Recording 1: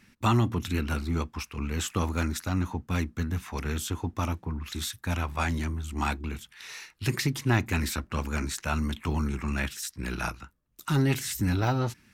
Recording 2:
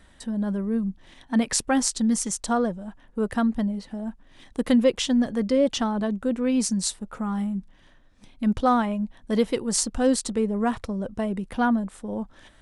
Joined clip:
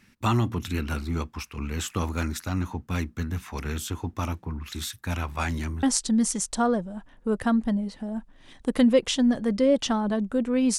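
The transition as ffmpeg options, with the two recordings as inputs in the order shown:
-filter_complex "[0:a]apad=whole_dur=10.78,atrim=end=10.78,atrim=end=5.832[a];[1:a]atrim=start=1.738:end=6.69[b];[a][b]acrossfade=d=0.004:c1=hsin:c2=hsin"

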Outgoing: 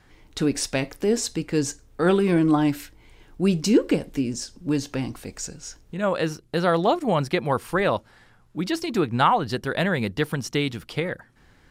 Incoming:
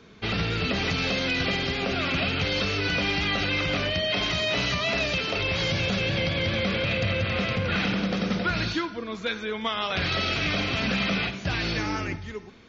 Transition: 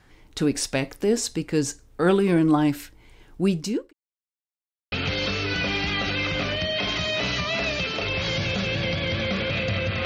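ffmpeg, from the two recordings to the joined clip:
-filter_complex "[0:a]apad=whole_dur=10.05,atrim=end=10.05,asplit=2[a][b];[a]atrim=end=3.93,asetpts=PTS-STARTPTS,afade=t=out:st=3.42:d=0.51[c];[b]atrim=start=3.93:end=4.92,asetpts=PTS-STARTPTS,volume=0[d];[1:a]atrim=start=2.26:end=7.39,asetpts=PTS-STARTPTS,afade=t=in:d=0.004:c=hsin[e];[c][d][e]concat=n=3:v=0:a=1"

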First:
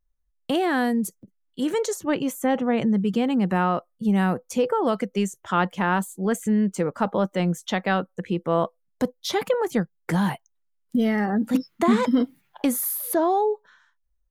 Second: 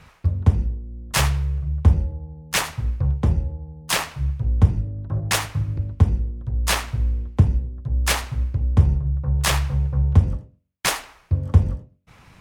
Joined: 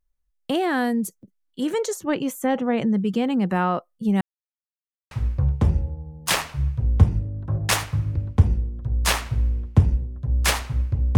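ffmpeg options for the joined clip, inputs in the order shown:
-filter_complex "[0:a]apad=whole_dur=11.17,atrim=end=11.17,asplit=2[a][b];[a]atrim=end=4.21,asetpts=PTS-STARTPTS,afade=t=out:st=4.206:d=0.004:c=hsin[c];[b]atrim=start=4.21:end=5.11,asetpts=PTS-STARTPTS,volume=0[d];[1:a]atrim=start=2.73:end=8.79,asetpts=PTS-STARTPTS,afade=t=in:d=0.004:c=hsin[e];[c][d][e]concat=n=3:v=0:a=1"

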